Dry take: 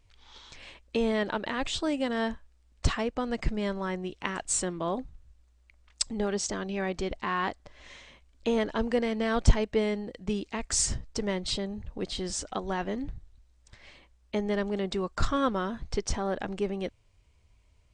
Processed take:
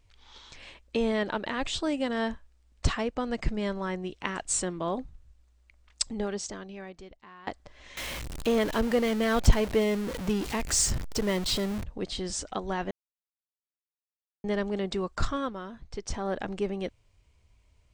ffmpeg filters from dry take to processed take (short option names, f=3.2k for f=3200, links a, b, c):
-filter_complex "[0:a]asettb=1/sr,asplit=3[a][b][c];[a]atrim=end=7.974[d];[b]atrim=start=7.97:end=11.84,asetpts=PTS-STARTPTS,afade=t=in:d=0.004:c=qsin,afade=t=out:st=3.866:d=0.004:c=qsin,aeval=exprs='val(0)+0.5*0.0282*sgn(val(0))':c=same[e];[c]atrim=start=11.836[f];[d][e]acrossfade=d=0.004:c1=hsin:c2=qsin[g];[g][f]acrossfade=d=0.004:c1=qsin:c2=hsin,asplit=6[h][i][j][k][l][m];[h]atrim=end=7.47,asetpts=PTS-STARTPTS,afade=t=out:st=6.07:d=1.4:c=qua:silence=0.0891251[n];[i]atrim=start=7.47:end=12.91,asetpts=PTS-STARTPTS,afade=t=in:d=0.004:c=hsin:silence=0.0891251,afade=t=out:st=5.436:d=0.004:c=hsin[o];[j]atrim=start=12.91:end=14.44,asetpts=PTS-STARTPTS,volume=0[p];[k]atrim=start=14.44:end=15.54,asetpts=PTS-STARTPTS,afade=t=in:d=0.004:c=hsin,afade=t=out:st=0.71:d=0.39:silence=0.375837[q];[l]atrim=start=15.54:end=15.94,asetpts=PTS-STARTPTS,volume=-8.5dB[r];[m]atrim=start=15.94,asetpts=PTS-STARTPTS,afade=t=in:d=0.39:silence=0.375837[s];[n][o][p][q][r][s]concat=n=6:v=0:a=1"